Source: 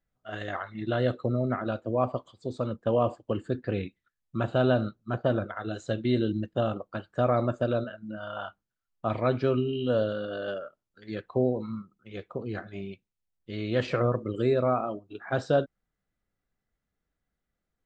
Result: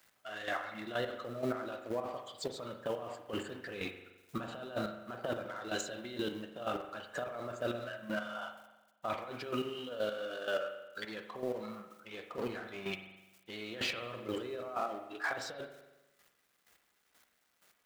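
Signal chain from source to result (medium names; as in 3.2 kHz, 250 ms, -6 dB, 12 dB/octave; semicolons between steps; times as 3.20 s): companding laws mixed up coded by mu; high-pass 980 Hz 6 dB/octave; compressor with a negative ratio -34 dBFS, ratio -0.5; peak limiter -32.5 dBFS, peak gain reduction 12.5 dB; square tremolo 2.1 Hz, depth 65%, duty 20%; spring tank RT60 1.1 s, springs 42 ms, chirp 65 ms, DRR 7 dB; trim +7.5 dB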